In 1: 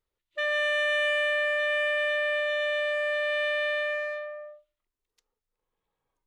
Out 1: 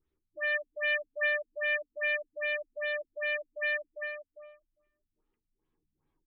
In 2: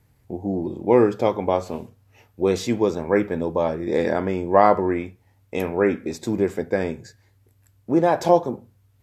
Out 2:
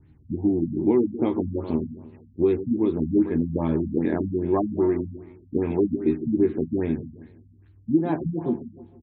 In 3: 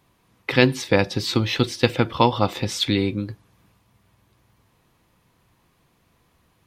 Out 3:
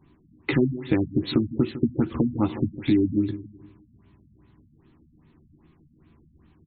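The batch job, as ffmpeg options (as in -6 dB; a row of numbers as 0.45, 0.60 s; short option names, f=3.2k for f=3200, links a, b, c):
-filter_complex "[0:a]lowshelf=f=420:t=q:w=3:g=7,acompressor=threshold=-18dB:ratio=4,asplit=2[a][b];[b]adelay=13,volume=-5dB[c];[a][c]amix=inputs=2:normalize=0,aecho=1:1:155|310|465|620:0.224|0.0895|0.0358|0.0143,afftfilt=real='re*lt(b*sr/1024,240*pow(4500/240,0.5+0.5*sin(2*PI*2.5*pts/sr)))':imag='im*lt(b*sr/1024,240*pow(4500/240,0.5+0.5*sin(2*PI*2.5*pts/sr)))':win_size=1024:overlap=0.75,volume=-2dB"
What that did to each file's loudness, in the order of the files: -5.5, -2.5, -3.5 LU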